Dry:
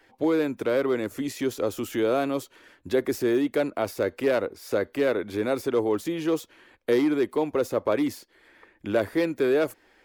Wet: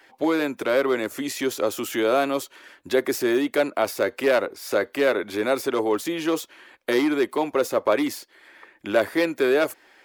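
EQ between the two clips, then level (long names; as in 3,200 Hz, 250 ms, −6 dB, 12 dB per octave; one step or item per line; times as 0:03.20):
low-shelf EQ 100 Hz −9 dB
low-shelf EQ 300 Hz −10.5 dB
notch filter 470 Hz, Q 12
+7.0 dB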